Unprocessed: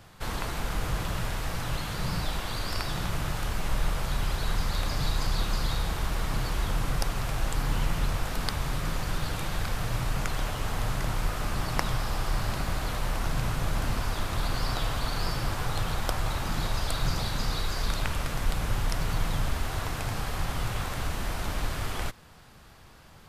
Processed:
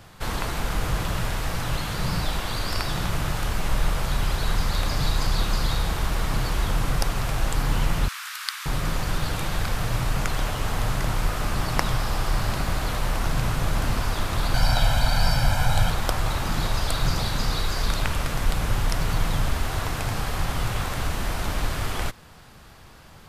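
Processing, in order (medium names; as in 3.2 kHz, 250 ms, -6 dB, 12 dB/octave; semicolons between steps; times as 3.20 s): 8.08–8.66 s: steep high-pass 1.2 kHz 36 dB/octave; 14.54–15.90 s: comb 1.3 ms, depth 89%; trim +4.5 dB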